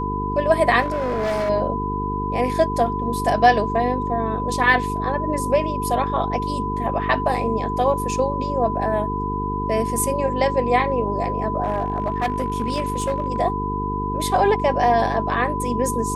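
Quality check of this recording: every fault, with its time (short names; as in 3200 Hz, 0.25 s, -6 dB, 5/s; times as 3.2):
buzz 50 Hz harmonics 9 -27 dBFS
tone 1000 Hz -25 dBFS
0.81–1.5 clipped -19.5 dBFS
11.63–13.4 clipped -17 dBFS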